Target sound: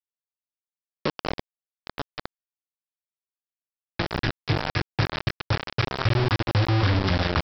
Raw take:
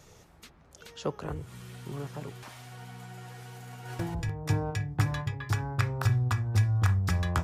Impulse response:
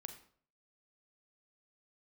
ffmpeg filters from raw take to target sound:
-af "acompressor=threshold=0.0251:ratio=2,aresample=11025,acrusher=bits=4:mix=0:aa=0.000001,aresample=44100,volume=2.24"

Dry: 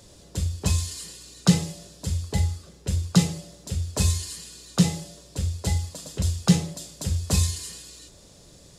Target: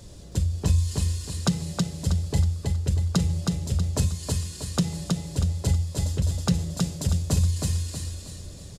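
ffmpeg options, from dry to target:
-af "lowshelf=f=200:g=11,acompressor=threshold=0.0891:ratio=6,aecho=1:1:320|640|960|1280|1600:0.708|0.29|0.119|0.0488|0.02"

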